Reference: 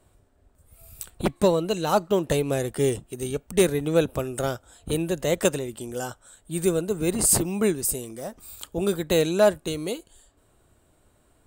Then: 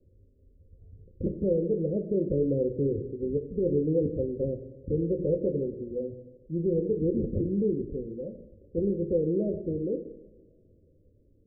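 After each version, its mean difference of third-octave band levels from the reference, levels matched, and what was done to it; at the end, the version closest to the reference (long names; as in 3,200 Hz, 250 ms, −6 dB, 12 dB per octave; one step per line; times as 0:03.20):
17.0 dB: Butterworth low-pass 550 Hz 96 dB per octave
mains-hum notches 60/120/180/240/300/360/420 Hz
brickwall limiter −19.5 dBFS, peak gain reduction 10 dB
coupled-rooms reverb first 0.7 s, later 2.4 s, DRR 4.5 dB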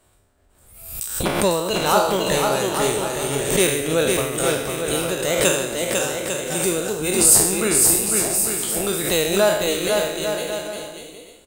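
10.5 dB: peak hold with a decay on every bin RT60 0.76 s
tilt shelving filter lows −4.5 dB, about 670 Hz
on a send: bouncing-ball delay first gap 500 ms, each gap 0.7×, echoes 5
on the sum: background raised ahead of every attack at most 67 dB per second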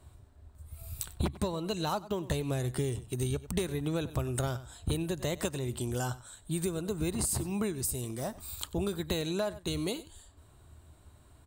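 5.0 dB: thirty-one-band graphic EQ 125 Hz +7 dB, 500 Hz −6 dB, 1,000 Hz +4 dB, 4,000 Hz +5 dB
single-tap delay 95 ms −20 dB
downward compressor 12 to 1, threshold −29 dBFS, peak gain reduction 15.5 dB
parametric band 76 Hz +14 dB 0.57 octaves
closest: third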